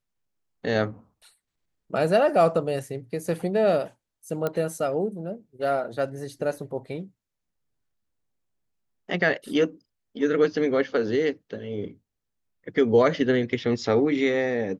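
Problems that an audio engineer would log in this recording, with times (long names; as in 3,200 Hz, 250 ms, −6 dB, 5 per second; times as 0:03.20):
0:04.47: click −14 dBFS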